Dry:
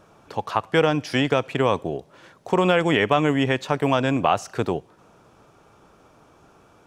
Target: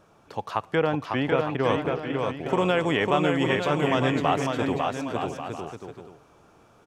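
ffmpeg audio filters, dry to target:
-filter_complex "[0:a]asettb=1/sr,asplit=3[s0][s1][s2];[s0]atrim=end=0.754[s3];[s1]atrim=start=0.75:end=1.64,asetpts=PTS-STARTPTS,afade=t=in:d=0.004:c=qsin,afade=t=out:st=0.886:d=0.004:c=qsin,lowpass=2500[s4];[s2]atrim=start=1.636[s5];[s3][s4]acrossfade=d=0.004:c1=hsin:c2=qsin[s6];[s6][s5]acrossfade=d=0.004:c1=qsin:c2=hsin,asplit=2[s7][s8];[s8]aecho=0:1:550|907.5|1140|1291|1389:0.631|0.398|0.251|0.158|0.1[s9];[s7][s9]amix=inputs=2:normalize=0,volume=0.596"

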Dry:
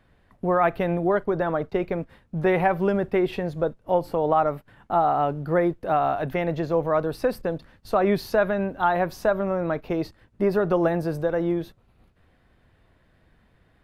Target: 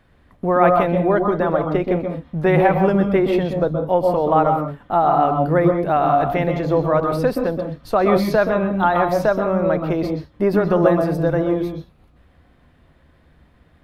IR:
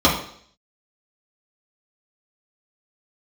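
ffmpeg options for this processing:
-filter_complex "[0:a]asplit=2[s0][s1];[1:a]atrim=start_sample=2205,afade=t=out:st=0.14:d=0.01,atrim=end_sample=6615,adelay=123[s2];[s1][s2]afir=irnorm=-1:irlink=0,volume=0.0501[s3];[s0][s3]amix=inputs=2:normalize=0,volume=1.58"

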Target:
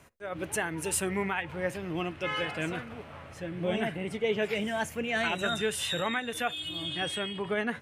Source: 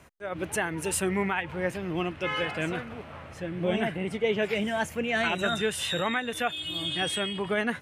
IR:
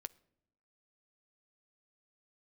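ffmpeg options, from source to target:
-filter_complex "[0:a]asetnsamples=n=441:p=0,asendcmd='6.69 highshelf g -4.5',highshelf=f=5100:g=3.5[s0];[1:a]atrim=start_sample=2205,atrim=end_sample=3528[s1];[s0][s1]afir=irnorm=-1:irlink=0,volume=1.19"

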